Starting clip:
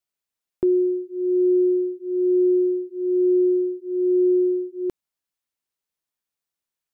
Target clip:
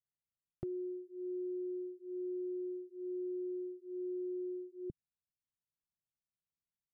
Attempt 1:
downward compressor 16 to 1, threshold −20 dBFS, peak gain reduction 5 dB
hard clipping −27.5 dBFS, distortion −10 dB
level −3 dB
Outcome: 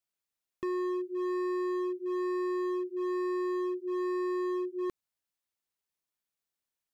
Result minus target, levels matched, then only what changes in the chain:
125 Hz band −18.0 dB
add after downward compressor: low-pass with resonance 150 Hz, resonance Q 1.5

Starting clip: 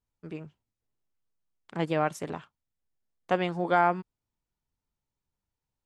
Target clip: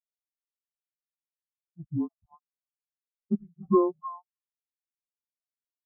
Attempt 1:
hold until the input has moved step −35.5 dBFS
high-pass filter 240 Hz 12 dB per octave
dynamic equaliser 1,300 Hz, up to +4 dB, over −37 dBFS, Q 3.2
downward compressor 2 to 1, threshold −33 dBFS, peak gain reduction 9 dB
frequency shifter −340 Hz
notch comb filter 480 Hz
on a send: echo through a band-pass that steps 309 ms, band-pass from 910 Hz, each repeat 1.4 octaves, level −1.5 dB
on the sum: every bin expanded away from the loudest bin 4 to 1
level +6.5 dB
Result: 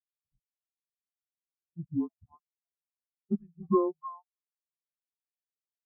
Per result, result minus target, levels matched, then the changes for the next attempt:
hold until the input has moved: distortion −5 dB; downward compressor: peak gain reduction +3 dB
change: hold until the input has moved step −27 dBFS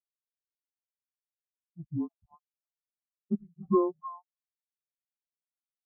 downward compressor: peak gain reduction +3 dB
change: downward compressor 2 to 1, threshold −27 dBFS, peak gain reduction 6 dB

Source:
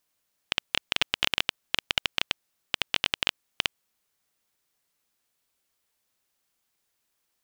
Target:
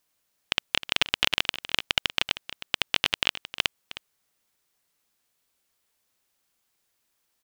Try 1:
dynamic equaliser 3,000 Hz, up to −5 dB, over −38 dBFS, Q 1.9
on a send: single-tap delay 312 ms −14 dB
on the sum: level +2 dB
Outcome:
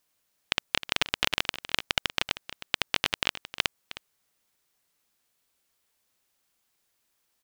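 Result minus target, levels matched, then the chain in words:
8,000 Hz band +2.5 dB
dynamic equaliser 8,200 Hz, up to −5 dB, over −38 dBFS, Q 1.9
on a send: single-tap delay 312 ms −14 dB
on the sum: level +2 dB

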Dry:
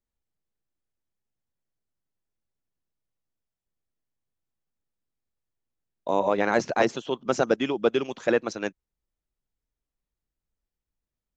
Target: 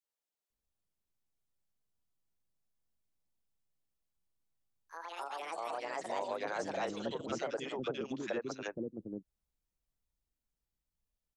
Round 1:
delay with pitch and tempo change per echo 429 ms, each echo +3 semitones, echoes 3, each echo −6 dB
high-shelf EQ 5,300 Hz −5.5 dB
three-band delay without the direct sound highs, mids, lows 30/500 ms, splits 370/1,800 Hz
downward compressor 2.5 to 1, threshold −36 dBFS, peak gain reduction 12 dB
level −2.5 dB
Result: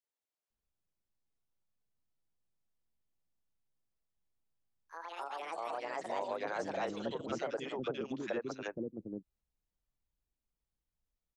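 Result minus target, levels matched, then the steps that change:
8,000 Hz band −4.5 dB
change: high-shelf EQ 5,300 Hz +2 dB

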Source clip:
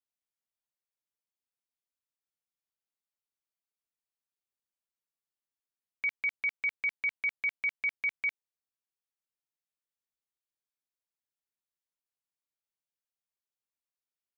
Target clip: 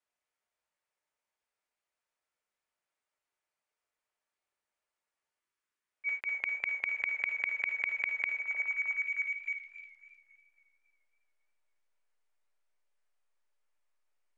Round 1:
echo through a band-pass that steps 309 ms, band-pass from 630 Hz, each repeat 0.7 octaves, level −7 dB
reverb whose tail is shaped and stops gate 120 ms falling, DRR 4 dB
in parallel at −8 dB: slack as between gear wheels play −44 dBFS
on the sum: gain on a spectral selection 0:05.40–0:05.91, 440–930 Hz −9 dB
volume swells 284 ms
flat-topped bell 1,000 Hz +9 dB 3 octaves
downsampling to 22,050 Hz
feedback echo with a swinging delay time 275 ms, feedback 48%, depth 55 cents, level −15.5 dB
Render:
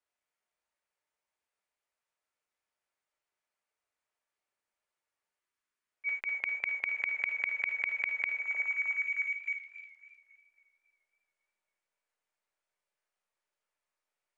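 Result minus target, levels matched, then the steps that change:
slack as between gear wheels: distortion −6 dB
change: slack as between gear wheels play −37.5 dBFS

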